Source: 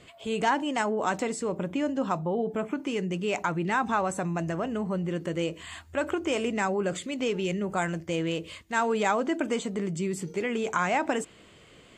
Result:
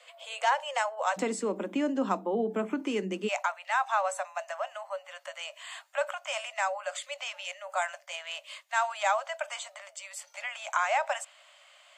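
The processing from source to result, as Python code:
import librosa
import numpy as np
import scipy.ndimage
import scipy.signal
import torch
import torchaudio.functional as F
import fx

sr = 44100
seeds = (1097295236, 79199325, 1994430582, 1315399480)

y = fx.cheby1_highpass(x, sr, hz=fx.steps((0.0, 490.0), (1.16, 190.0), (3.27, 560.0)), order=10)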